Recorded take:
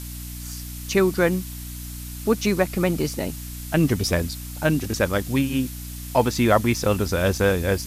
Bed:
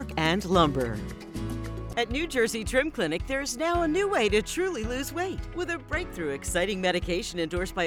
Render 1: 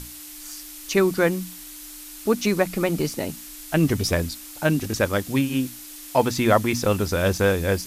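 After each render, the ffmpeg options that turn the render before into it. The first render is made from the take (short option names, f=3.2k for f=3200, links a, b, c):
-af "bandreject=f=60:t=h:w=6,bandreject=f=120:t=h:w=6,bandreject=f=180:t=h:w=6,bandreject=f=240:t=h:w=6"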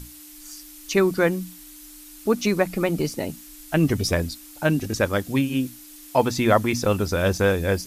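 -af "afftdn=nr=6:nf=-40"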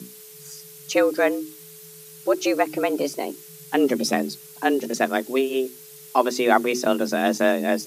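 -af "afreqshift=130"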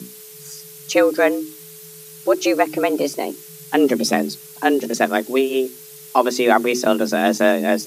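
-af "volume=4dB,alimiter=limit=-2dB:level=0:latency=1"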